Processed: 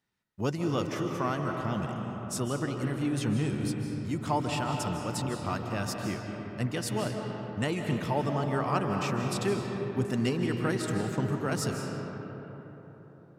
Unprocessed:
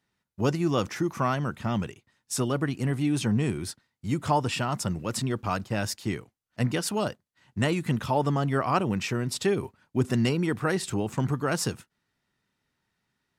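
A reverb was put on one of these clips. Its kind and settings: digital reverb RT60 4.3 s, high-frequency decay 0.4×, pre-delay 0.115 s, DRR 2.5 dB; gain -5 dB

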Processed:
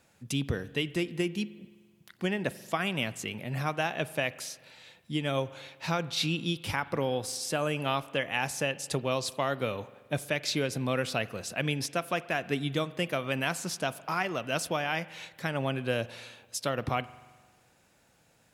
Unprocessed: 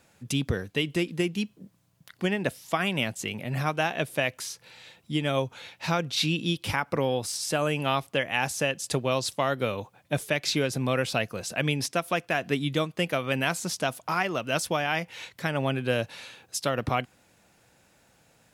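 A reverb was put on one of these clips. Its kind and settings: spring tank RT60 1.5 s, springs 43 ms, chirp 40 ms, DRR 17 dB; gain -3.5 dB

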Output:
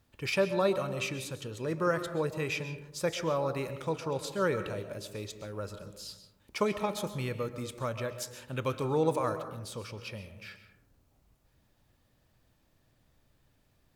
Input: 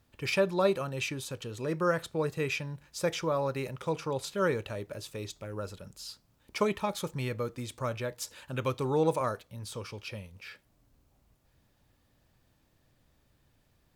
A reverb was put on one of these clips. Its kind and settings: digital reverb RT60 1 s, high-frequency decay 0.3×, pre-delay 90 ms, DRR 10 dB; gain -1 dB

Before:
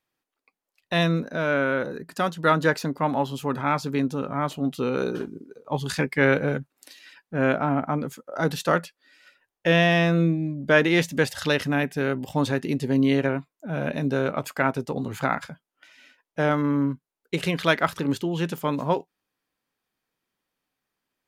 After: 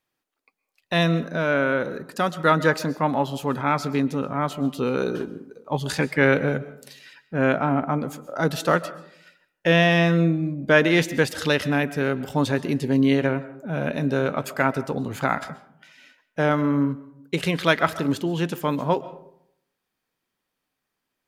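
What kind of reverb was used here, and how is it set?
digital reverb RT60 0.72 s, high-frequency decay 0.4×, pre-delay 90 ms, DRR 16 dB; gain +1.5 dB

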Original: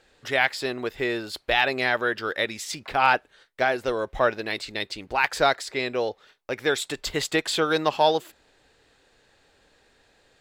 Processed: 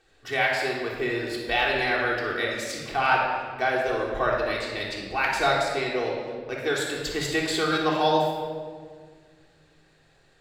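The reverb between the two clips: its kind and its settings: shoebox room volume 2300 m³, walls mixed, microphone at 3.5 m; gain -6 dB

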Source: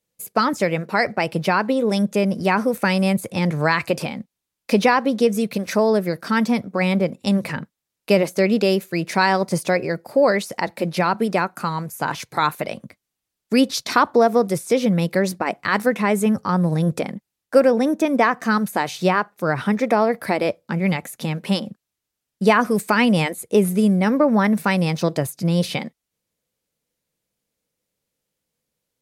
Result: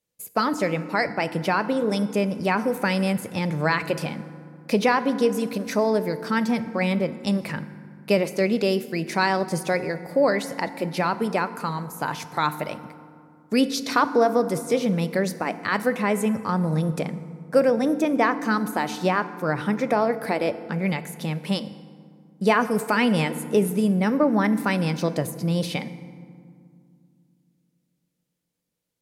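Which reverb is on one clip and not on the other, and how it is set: FDN reverb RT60 2.2 s, low-frequency decay 1.55×, high-frequency decay 0.5×, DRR 12 dB; gain -4 dB

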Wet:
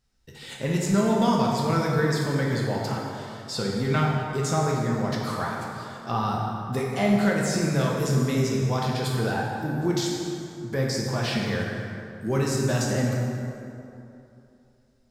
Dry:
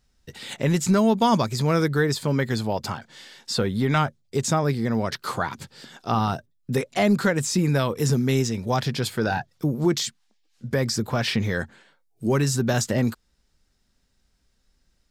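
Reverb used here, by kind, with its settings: plate-style reverb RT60 2.8 s, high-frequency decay 0.55×, DRR -3 dB; gain -6.5 dB

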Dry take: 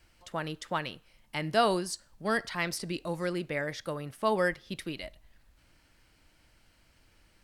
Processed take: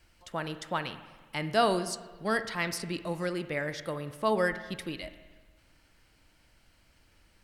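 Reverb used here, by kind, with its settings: spring tank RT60 1.4 s, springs 46/55 ms, chirp 65 ms, DRR 11.5 dB

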